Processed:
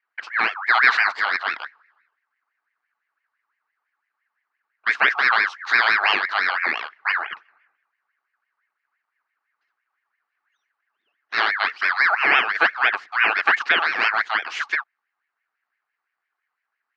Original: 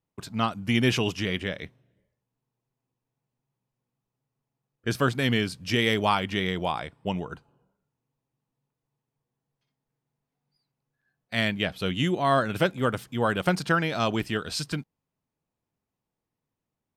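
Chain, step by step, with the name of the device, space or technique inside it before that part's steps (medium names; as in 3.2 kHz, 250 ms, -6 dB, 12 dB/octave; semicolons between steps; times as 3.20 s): voice changer toy (ring modulator with a swept carrier 1.5 kHz, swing 35%, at 5.9 Hz; cabinet simulation 550–4200 Hz, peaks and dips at 550 Hz -10 dB, 920 Hz -4 dB, 1.6 kHz +4 dB, 3.5 kHz -8 dB); trim +9 dB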